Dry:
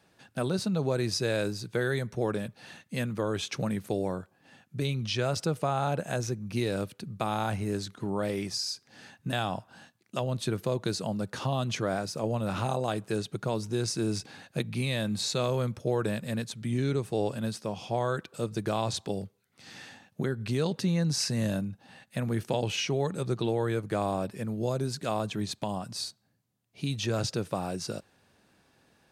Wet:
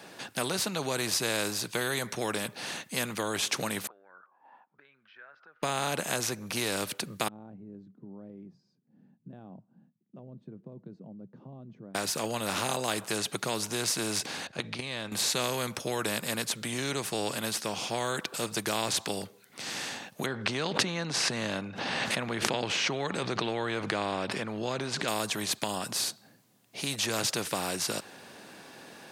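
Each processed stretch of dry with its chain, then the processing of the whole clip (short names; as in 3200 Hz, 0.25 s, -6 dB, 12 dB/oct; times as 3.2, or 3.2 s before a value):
3.87–5.63 compressor 4:1, threshold -46 dBFS + auto-wah 770–1600 Hz, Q 9.1, up, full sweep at -42 dBFS + air absorption 290 m
7.28–11.95 Butterworth band-pass 160 Hz, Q 1.8 + tilt +4.5 dB/oct
14.47–15.12 LPF 5100 Hz + bell 70 Hz +13 dB 0.83 oct + level quantiser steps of 13 dB
20.26–25.08 LPF 3100 Hz + backwards sustainer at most 27 dB/s
whole clip: HPF 210 Hz 12 dB/oct; notch 1300 Hz, Q 29; spectral compressor 2:1; gain +7 dB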